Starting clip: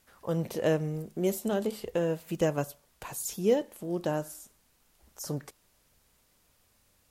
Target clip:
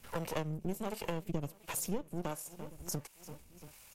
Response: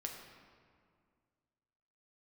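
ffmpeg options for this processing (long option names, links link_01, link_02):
-filter_complex "[0:a]atempo=1.8,superequalizer=9b=1.41:12b=2.24,aecho=1:1:342|684|1026|1368:0.0708|0.0418|0.0246|0.0145,acrossover=split=190|5200[link_01][link_02][link_03];[link_02]aeval=exprs='max(val(0),0)':channel_layout=same[link_04];[link_01][link_04][link_03]amix=inputs=3:normalize=0,acrossover=split=470[link_05][link_06];[link_05]aeval=exprs='val(0)*(1-0.7/2+0.7/2*cos(2*PI*1.4*n/s))':channel_layout=same[link_07];[link_06]aeval=exprs='val(0)*(1-0.7/2-0.7/2*cos(2*PI*1.4*n/s))':channel_layout=same[link_08];[link_07][link_08]amix=inputs=2:normalize=0,acompressor=threshold=-52dB:ratio=3,volume=13.5dB"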